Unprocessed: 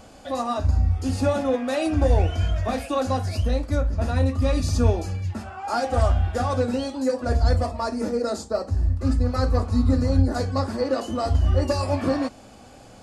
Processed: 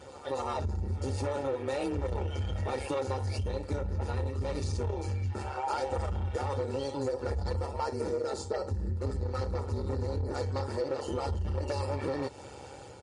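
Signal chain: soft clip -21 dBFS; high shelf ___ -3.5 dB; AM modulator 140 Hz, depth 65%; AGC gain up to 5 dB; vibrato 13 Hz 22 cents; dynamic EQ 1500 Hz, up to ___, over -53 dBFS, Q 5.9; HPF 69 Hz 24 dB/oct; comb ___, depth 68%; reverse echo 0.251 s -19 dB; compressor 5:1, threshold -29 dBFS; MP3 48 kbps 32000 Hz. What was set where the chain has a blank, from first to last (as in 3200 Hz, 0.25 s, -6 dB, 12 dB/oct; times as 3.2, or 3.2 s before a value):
2200 Hz, -4 dB, 2.2 ms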